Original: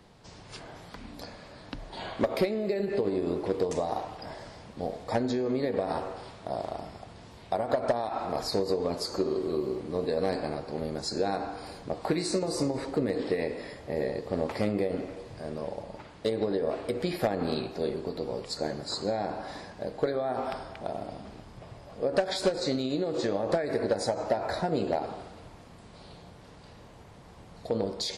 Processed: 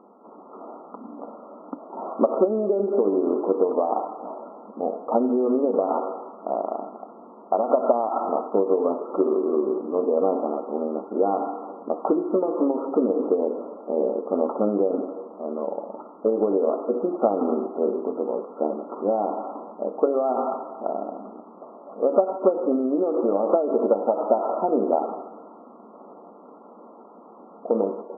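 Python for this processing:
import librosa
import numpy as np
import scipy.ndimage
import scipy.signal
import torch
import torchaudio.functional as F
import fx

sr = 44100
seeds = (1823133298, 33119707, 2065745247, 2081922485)

y = fx.brickwall_bandpass(x, sr, low_hz=200.0, high_hz=1400.0)
y = F.gain(torch.from_numpy(y), 7.5).numpy()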